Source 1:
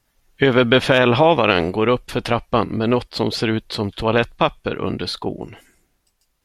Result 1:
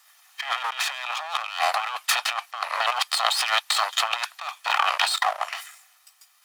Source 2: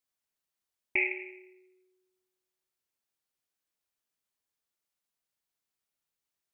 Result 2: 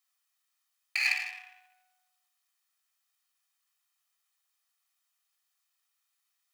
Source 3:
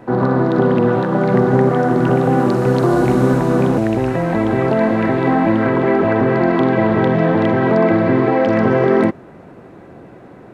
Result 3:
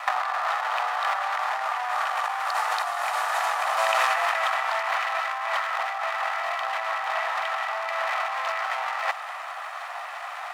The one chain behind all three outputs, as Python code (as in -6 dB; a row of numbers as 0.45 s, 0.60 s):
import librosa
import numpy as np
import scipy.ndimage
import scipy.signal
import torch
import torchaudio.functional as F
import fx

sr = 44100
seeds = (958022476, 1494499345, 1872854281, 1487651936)

y = fx.lower_of_two(x, sr, delay_ms=1.6)
y = scipy.signal.sosfilt(scipy.signal.butter(8, 790.0, 'highpass', fs=sr, output='sos'), y)
y = fx.over_compress(y, sr, threshold_db=-34.0, ratio=-1.0)
y = y * librosa.db_to_amplitude(7.0)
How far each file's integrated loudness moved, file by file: -6.0 LU, +1.5 LU, -11.5 LU